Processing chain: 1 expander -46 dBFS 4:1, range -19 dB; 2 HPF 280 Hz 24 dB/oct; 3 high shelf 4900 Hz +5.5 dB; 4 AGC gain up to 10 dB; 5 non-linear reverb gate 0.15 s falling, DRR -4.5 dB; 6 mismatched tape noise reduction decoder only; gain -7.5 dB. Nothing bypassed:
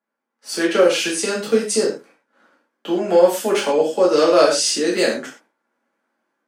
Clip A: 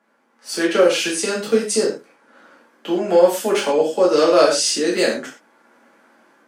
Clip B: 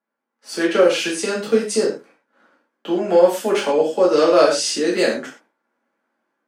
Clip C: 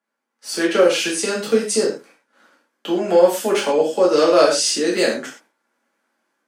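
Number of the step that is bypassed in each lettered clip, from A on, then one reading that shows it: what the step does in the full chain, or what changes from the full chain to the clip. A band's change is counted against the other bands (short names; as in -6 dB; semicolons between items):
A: 1, momentary loudness spread change +2 LU; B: 3, 8 kHz band -3.5 dB; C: 6, momentary loudness spread change +2 LU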